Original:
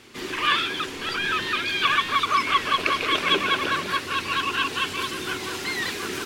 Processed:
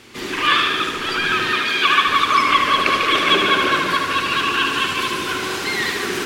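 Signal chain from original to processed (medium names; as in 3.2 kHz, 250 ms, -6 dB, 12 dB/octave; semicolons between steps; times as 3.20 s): 1.52–2.07 s: high-pass 200 Hz 12 dB/octave; tape echo 74 ms, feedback 76%, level -4 dB, low-pass 4.7 kHz; trim +4.5 dB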